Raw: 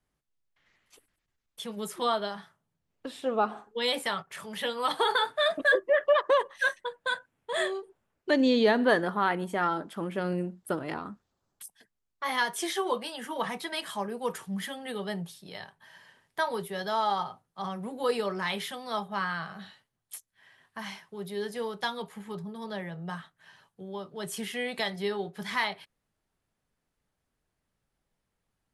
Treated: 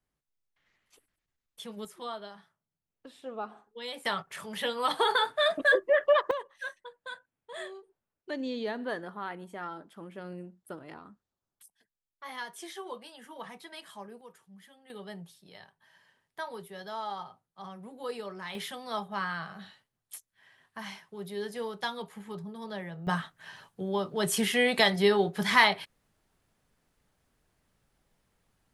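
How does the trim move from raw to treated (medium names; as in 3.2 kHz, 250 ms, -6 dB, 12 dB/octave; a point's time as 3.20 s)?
-4.5 dB
from 1.85 s -11 dB
from 4.05 s 0 dB
from 6.31 s -11.5 dB
from 14.21 s -20 dB
from 14.90 s -9 dB
from 18.55 s -2 dB
from 23.07 s +8 dB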